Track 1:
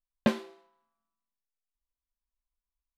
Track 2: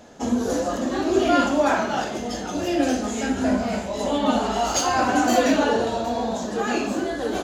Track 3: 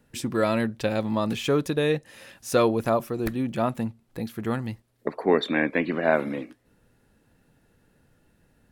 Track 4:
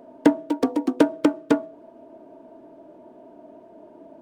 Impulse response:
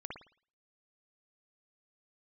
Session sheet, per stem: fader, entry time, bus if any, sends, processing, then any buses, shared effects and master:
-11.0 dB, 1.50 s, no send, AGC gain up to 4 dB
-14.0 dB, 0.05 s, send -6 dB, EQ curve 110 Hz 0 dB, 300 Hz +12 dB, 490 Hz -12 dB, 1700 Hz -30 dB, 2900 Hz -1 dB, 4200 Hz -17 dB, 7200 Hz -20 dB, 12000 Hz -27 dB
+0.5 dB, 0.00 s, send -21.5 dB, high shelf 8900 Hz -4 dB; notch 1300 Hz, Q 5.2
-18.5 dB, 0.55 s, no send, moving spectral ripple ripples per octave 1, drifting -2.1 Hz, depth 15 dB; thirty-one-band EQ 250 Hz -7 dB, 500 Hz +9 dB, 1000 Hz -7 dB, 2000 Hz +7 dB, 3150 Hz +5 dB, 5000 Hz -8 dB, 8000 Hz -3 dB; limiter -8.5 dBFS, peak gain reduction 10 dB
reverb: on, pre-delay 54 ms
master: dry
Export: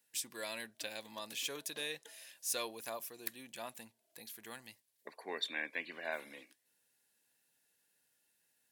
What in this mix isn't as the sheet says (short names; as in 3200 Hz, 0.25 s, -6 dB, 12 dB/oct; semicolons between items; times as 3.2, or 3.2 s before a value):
stem 2: muted; reverb: off; master: extra differentiator